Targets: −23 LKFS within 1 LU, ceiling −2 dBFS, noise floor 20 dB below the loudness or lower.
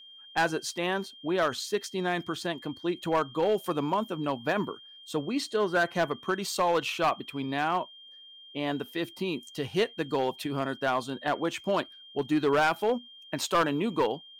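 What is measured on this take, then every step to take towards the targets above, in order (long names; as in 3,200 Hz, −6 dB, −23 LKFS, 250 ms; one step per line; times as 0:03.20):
share of clipped samples 0.8%; peaks flattened at −19.0 dBFS; interfering tone 3,200 Hz; level of the tone −48 dBFS; integrated loudness −29.5 LKFS; sample peak −19.0 dBFS; target loudness −23.0 LKFS
→ clipped peaks rebuilt −19 dBFS
notch filter 3,200 Hz, Q 30
level +6.5 dB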